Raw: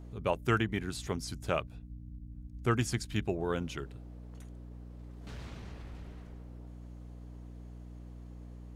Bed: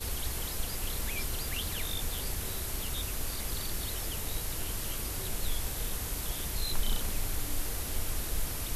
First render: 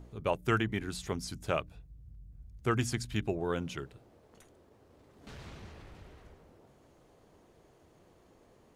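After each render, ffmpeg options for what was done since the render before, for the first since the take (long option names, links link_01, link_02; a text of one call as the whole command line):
ffmpeg -i in.wav -af "bandreject=frequency=60:width_type=h:width=4,bandreject=frequency=120:width_type=h:width=4,bandreject=frequency=180:width_type=h:width=4,bandreject=frequency=240:width_type=h:width=4,bandreject=frequency=300:width_type=h:width=4" out.wav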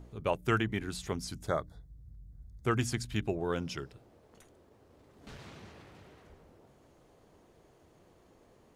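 ffmpeg -i in.wav -filter_complex "[0:a]asplit=3[link_01][link_02][link_03];[link_01]afade=type=out:start_time=1.46:duration=0.02[link_04];[link_02]asuperstop=centerf=2700:order=20:qfactor=2.4,afade=type=in:start_time=1.46:duration=0.02,afade=type=out:start_time=2.64:duration=0.02[link_05];[link_03]afade=type=in:start_time=2.64:duration=0.02[link_06];[link_04][link_05][link_06]amix=inputs=3:normalize=0,asettb=1/sr,asplit=3[link_07][link_08][link_09];[link_07]atrim=end=3.524[link_10];[link_08]atrim=start=3.52:end=3.93,asetpts=PTS-STARTPTS,afade=type=in:duration=0.004:curve=qsin,afade=type=out:start_time=0.406:duration=0.004:curve=qsin,equalizer=frequency=5200:width=5.9:gain=13[link_11];[link_09]atrim=start=3.926[link_12];[link_10][link_11]acrossfade=duration=0.004:curve1=hsin:curve2=qsin[link_13];[link_13][link_12]acrossfade=duration=0.004:curve1=qsin:curve2=hsin,asettb=1/sr,asplit=3[link_14][link_15][link_16];[link_14]atrim=end=5.374[link_17];[link_15]atrim=start=5.37:end=6.3,asetpts=PTS-STARTPTS,afade=type=in:duration=0.004:curve=qsin,afade=type=out:start_time=0.926:duration=0.004:curve=qsin,highpass=110[link_18];[link_16]atrim=start=6.296[link_19];[link_17][link_18]acrossfade=duration=0.004:curve1=hsin:curve2=qsin[link_20];[link_20][link_19]acrossfade=duration=0.004:curve1=qsin:curve2=hsin" out.wav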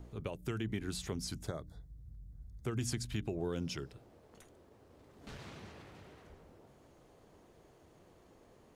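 ffmpeg -i in.wav -filter_complex "[0:a]alimiter=level_in=1dB:limit=-24dB:level=0:latency=1:release=104,volume=-1dB,acrossover=split=480|3000[link_01][link_02][link_03];[link_02]acompressor=threshold=-47dB:ratio=6[link_04];[link_01][link_04][link_03]amix=inputs=3:normalize=0" out.wav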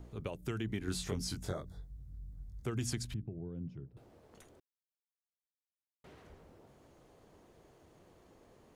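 ffmpeg -i in.wav -filter_complex "[0:a]asettb=1/sr,asplit=3[link_01][link_02][link_03];[link_01]atrim=end=0.854[link_04];[link_02]atrim=start=0.85:end=2.63,asetpts=PTS-STARTPTS,afade=type=in:duration=0.004:curve=qsin,afade=type=out:start_time=1.776:duration=0.004:curve=qsin,asplit=2[link_05][link_06];[link_06]adelay=22,volume=-2.5dB[link_07];[link_05][link_07]amix=inputs=2:normalize=0,atrim=end_sample=78498[link_08];[link_03]atrim=start=2.626[link_09];[link_04][link_08]acrossfade=duration=0.004:curve1=hsin:curve2=qsin[link_10];[link_10][link_09]acrossfade=duration=0.004:curve1=qsin:curve2=hsin,asettb=1/sr,asplit=3[link_11][link_12][link_13];[link_11]atrim=end=3.144[link_14];[link_12]atrim=start=3.14:end=3.97,asetpts=PTS-STARTPTS,afade=type=in:duration=0.004:curve=qsin,afade=type=out:start_time=0.826:duration=0.004:curve=qsin,bandpass=frequency=130:width_type=q:width=1.2[link_15];[link_13]atrim=start=3.966[link_16];[link_14][link_15]acrossfade=duration=0.004:curve1=hsin:curve2=qsin[link_17];[link_17][link_16]acrossfade=duration=0.004:curve1=qsin:curve2=hsin,asplit=3[link_18][link_19][link_20];[link_18]atrim=end=4.6,asetpts=PTS-STARTPTS,afade=type=out:start_time=4.596:duration=0.004:curve=hsin[link_21];[link_19]atrim=start=4.6:end=6.04,asetpts=PTS-STARTPTS,volume=0[link_22];[link_20]atrim=start=6.04,asetpts=PTS-STARTPTS,afade=type=in:duration=0.004:curve=hsin[link_23];[link_21][link_22][link_23]concat=n=3:v=0:a=1" out.wav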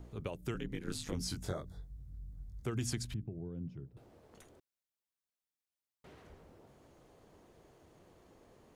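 ffmpeg -i in.wav -filter_complex "[0:a]asettb=1/sr,asplit=3[link_01][link_02][link_03];[link_01]atrim=end=0.544[link_04];[link_02]atrim=start=0.54:end=1.14,asetpts=PTS-STARTPTS,afade=type=in:duration=0.004:curve=qsin,afade=type=out:start_time=0.596:duration=0.004:curve=qsin,aeval=exprs='val(0)*sin(2*PI*75*n/s)':channel_layout=same[link_05];[link_03]atrim=start=1.136[link_06];[link_04][link_05]acrossfade=duration=0.004:curve1=hsin:curve2=qsin[link_07];[link_07][link_06]acrossfade=duration=0.004:curve1=qsin:curve2=hsin" out.wav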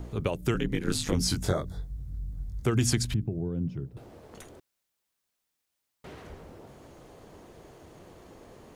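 ffmpeg -i in.wav -af "volume=11.5dB" out.wav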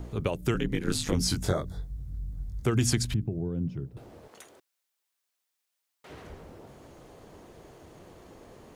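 ffmpeg -i in.wav -filter_complex "[0:a]asettb=1/sr,asplit=3[link_01][link_02][link_03];[link_01]atrim=end=4.284[link_04];[link_02]atrim=start=4.28:end=6.1,asetpts=PTS-STARTPTS,afade=type=in:duration=0.004:curve=qsin,afade=type=out:start_time=1.816:duration=0.004:curve=qsin,highpass=frequency=710:poles=1[link_05];[link_03]atrim=start=6.096[link_06];[link_04][link_05]acrossfade=duration=0.004:curve1=hsin:curve2=qsin[link_07];[link_07][link_06]acrossfade=duration=0.004:curve1=qsin:curve2=hsin" out.wav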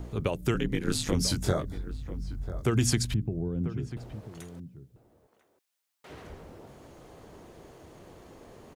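ffmpeg -i in.wav -filter_complex "[0:a]asplit=2[link_01][link_02];[link_02]adelay=991.3,volume=-13dB,highshelf=frequency=4000:gain=-22.3[link_03];[link_01][link_03]amix=inputs=2:normalize=0" out.wav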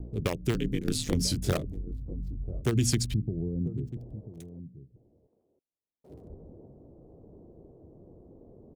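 ffmpeg -i in.wav -filter_complex "[0:a]acrossover=split=590|1800[link_01][link_02][link_03];[link_02]acrusher=bits=4:mix=0:aa=0.000001[link_04];[link_03]aeval=exprs='sgn(val(0))*max(abs(val(0))-0.00282,0)':channel_layout=same[link_05];[link_01][link_04][link_05]amix=inputs=3:normalize=0" out.wav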